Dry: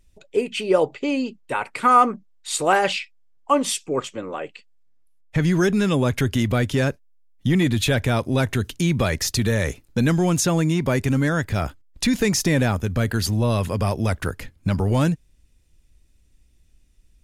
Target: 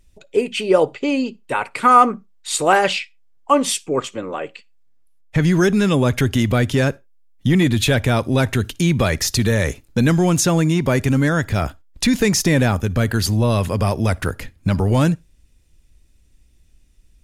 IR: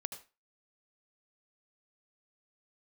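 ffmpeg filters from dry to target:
-filter_complex "[0:a]asplit=2[a][b];[1:a]atrim=start_sample=2205,afade=t=out:st=0.29:d=0.01,atrim=end_sample=13230,asetrate=61740,aresample=44100[c];[b][c]afir=irnorm=-1:irlink=0,volume=-13.5dB[d];[a][d]amix=inputs=2:normalize=0,volume=2.5dB"

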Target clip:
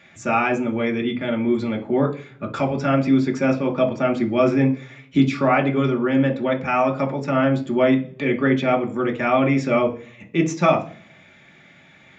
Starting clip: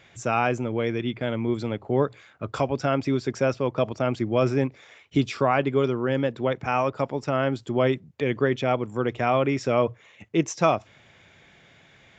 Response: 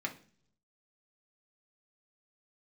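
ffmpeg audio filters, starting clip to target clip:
-filter_complex "[1:a]atrim=start_sample=2205[a];[0:a][a]afir=irnorm=-1:irlink=0,volume=2dB"

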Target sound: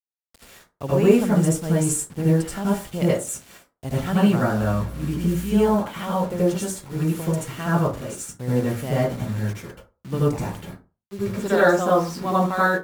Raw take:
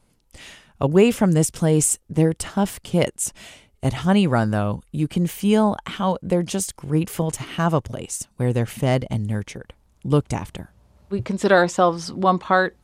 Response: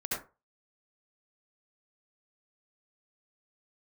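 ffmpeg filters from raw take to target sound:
-filter_complex "[0:a]asettb=1/sr,asplit=3[a][b][c];[a]atrim=end=4.524[d];[b]atrim=start=4.52:end=5.67,asetpts=PTS-STARTPTS,afade=t=in:d=0.004:c=qsin,afade=t=out:st=1.146:d=0.004:c=qsin,aeval=exprs='val(0)+0.02*(sin(2*PI*60*n/s)+sin(2*PI*2*60*n/s)/2+sin(2*PI*3*60*n/s)/3+sin(2*PI*4*60*n/s)/4+sin(2*PI*5*60*n/s)/5)':c=same[e];[c]atrim=start=5.666[f];[d][e]acrossfade=d=0.004:c1=hsin:c2=qsin[g];[g][f]acrossfade=d=0.004:c1=qsin:c2=hsin,acrusher=bits=5:mix=0:aa=0.000001[h];[1:a]atrim=start_sample=2205,asetrate=39249,aresample=44100[i];[h][i]afir=irnorm=-1:irlink=0,volume=-7.5dB"

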